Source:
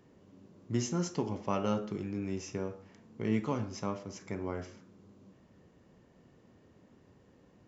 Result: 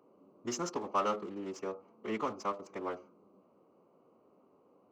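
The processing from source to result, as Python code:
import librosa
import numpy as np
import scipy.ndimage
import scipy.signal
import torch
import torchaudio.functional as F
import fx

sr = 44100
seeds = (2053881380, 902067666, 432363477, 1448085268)

p1 = fx.wiener(x, sr, points=25)
p2 = scipy.signal.sosfilt(scipy.signal.butter(2, 410.0, 'highpass', fs=sr, output='sos'), p1)
p3 = fx.peak_eq(p2, sr, hz=1200.0, db=9.5, octaves=0.37)
p4 = fx.stretch_vocoder(p3, sr, factor=0.64)
p5 = 10.0 ** (-36.5 / 20.0) * np.tanh(p4 / 10.0 ** (-36.5 / 20.0))
y = p4 + (p5 * librosa.db_to_amplitude(-3.5))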